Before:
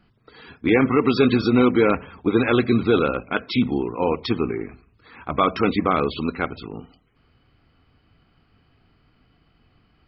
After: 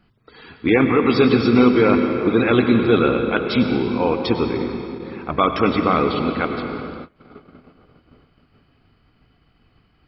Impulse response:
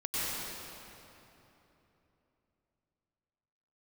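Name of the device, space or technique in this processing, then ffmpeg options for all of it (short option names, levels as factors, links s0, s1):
keyed gated reverb: -filter_complex "[0:a]asplit=3[s0][s1][s2];[1:a]atrim=start_sample=2205[s3];[s1][s3]afir=irnorm=-1:irlink=0[s4];[s2]apad=whole_len=444267[s5];[s4][s5]sidechaingate=range=0.0501:threshold=0.00126:ratio=16:detection=peak,volume=0.299[s6];[s0][s6]amix=inputs=2:normalize=0"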